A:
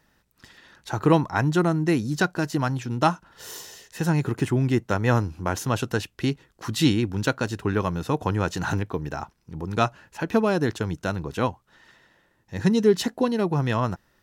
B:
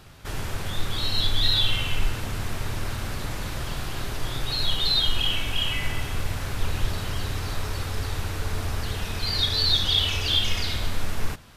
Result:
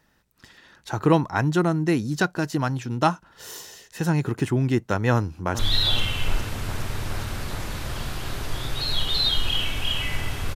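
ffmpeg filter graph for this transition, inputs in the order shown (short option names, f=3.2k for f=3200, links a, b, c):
-filter_complex "[0:a]apad=whole_dur=10.55,atrim=end=10.55,atrim=end=5.592[a];[1:a]atrim=start=1.298:end=6.26[b];[a][b]acrossfade=d=0.004:c1=hsin:c2=hsin,asplit=2[c][d];[d]afade=t=in:st=5.13:d=0.01,afade=t=out:st=5.59:d=0.01,aecho=0:1:410|820|1230|1640|2050|2460|2870|3280|3690|4100|4510|4920:0.251189|0.200951|0.160761|0.128609|0.102887|0.0823095|0.0658476|0.0526781|0.0421425|0.033714|0.0269712|0.0215769[e];[c][e]amix=inputs=2:normalize=0"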